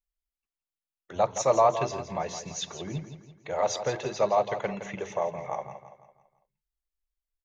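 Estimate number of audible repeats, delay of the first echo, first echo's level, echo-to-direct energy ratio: 4, 167 ms, −10.5 dB, −9.5 dB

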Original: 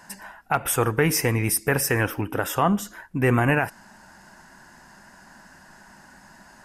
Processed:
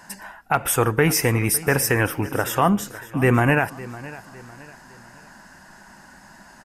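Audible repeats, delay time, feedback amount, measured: 3, 556 ms, 40%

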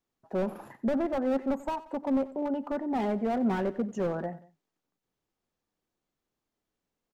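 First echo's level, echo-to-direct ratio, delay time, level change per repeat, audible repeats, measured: −18.0 dB, −17.0 dB, 91 ms, −6.0 dB, 2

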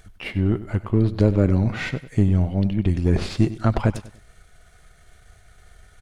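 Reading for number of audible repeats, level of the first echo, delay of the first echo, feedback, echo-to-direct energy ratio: 3, −15.0 dB, 97 ms, 34%, −14.5 dB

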